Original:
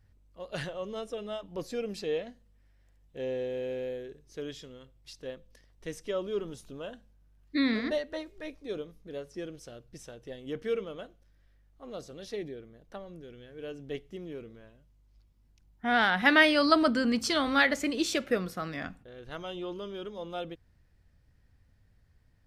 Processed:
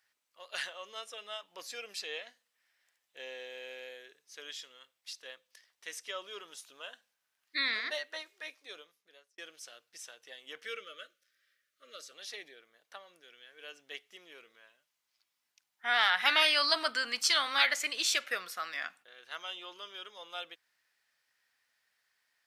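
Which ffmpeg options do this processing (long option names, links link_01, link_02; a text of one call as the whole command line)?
ffmpeg -i in.wav -filter_complex "[0:a]asettb=1/sr,asplit=3[link_01][link_02][link_03];[link_01]atrim=end=10.654[link_04];[link_02]atrim=start=10.65:end=12.12,asetpts=PTS-STARTPTS,afade=type=in:duration=0.004:curve=qsin,afade=type=out:start_time=1.466:duration=0.004:curve=qsin,asuperstop=centerf=860:order=20:qfactor=1.7[link_05];[link_03]atrim=start=12.116[link_06];[link_04][link_05]acrossfade=duration=0.004:curve1=hsin:curve2=qsin[link_07];[link_07][link_06]acrossfade=duration=0.004:curve1=qsin:curve2=hsin,asplit=2[link_08][link_09];[link_08]atrim=end=9.38,asetpts=PTS-STARTPTS,afade=type=out:start_time=8.56:duration=0.82[link_10];[link_09]atrim=start=9.38,asetpts=PTS-STARTPTS,afade=type=in:duration=0.004:curve=hsin[link_11];[link_10][link_11]concat=n=2:v=0:a=1,highpass=1400,afftfilt=real='re*lt(hypot(re,im),0.251)':imag='im*lt(hypot(re,im),0.251)':win_size=1024:overlap=0.75,volume=4.5dB" out.wav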